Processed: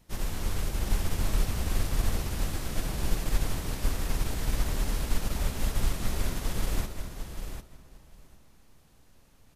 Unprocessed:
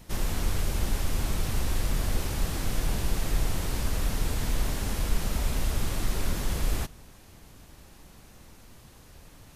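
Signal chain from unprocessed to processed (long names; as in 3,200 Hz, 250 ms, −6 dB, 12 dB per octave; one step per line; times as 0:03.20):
repeating echo 749 ms, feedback 19%, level −5.5 dB
convolution reverb RT60 2.8 s, pre-delay 110 ms, DRR 10 dB
expander for the loud parts 1.5 to 1, over −41 dBFS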